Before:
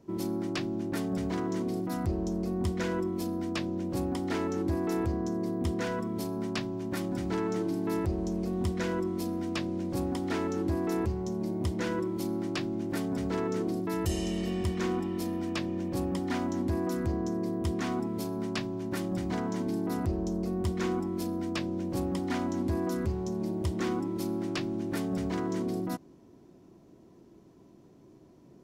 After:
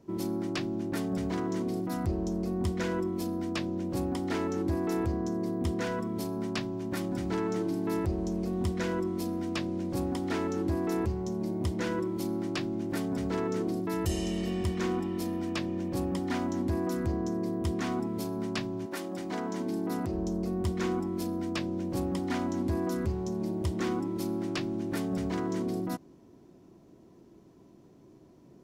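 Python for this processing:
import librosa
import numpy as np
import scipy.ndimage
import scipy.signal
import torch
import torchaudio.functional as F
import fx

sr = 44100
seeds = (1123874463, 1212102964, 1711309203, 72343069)

y = fx.highpass(x, sr, hz=fx.line((18.85, 390.0), (20.13, 120.0)), slope=12, at=(18.85, 20.13), fade=0.02)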